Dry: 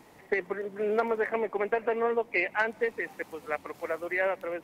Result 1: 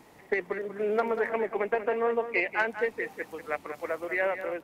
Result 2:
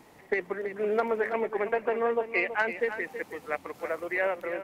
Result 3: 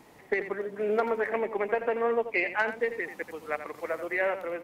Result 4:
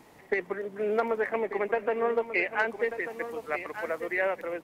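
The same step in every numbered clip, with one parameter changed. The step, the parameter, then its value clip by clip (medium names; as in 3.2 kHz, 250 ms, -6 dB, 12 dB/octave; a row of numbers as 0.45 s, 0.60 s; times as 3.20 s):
delay, time: 190 ms, 326 ms, 86 ms, 1190 ms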